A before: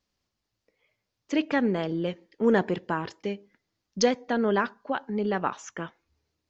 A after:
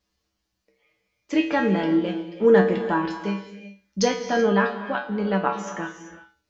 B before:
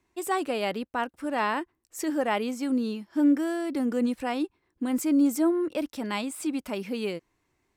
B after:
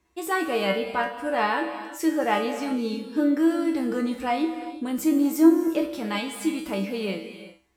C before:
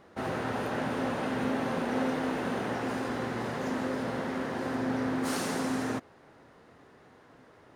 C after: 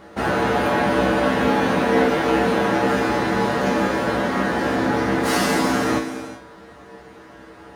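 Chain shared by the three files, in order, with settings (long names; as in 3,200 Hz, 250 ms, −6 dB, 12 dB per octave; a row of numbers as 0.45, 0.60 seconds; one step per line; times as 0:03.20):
reverb whose tail is shaped and stops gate 410 ms flat, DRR 8.5 dB
dynamic equaliser 8,500 Hz, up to −5 dB, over −54 dBFS, Q 1.2
tuned comb filter 65 Hz, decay 0.35 s, harmonics odd, mix 90%
normalise the peak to −6 dBFS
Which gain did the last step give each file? +14.0, +14.0, +23.5 decibels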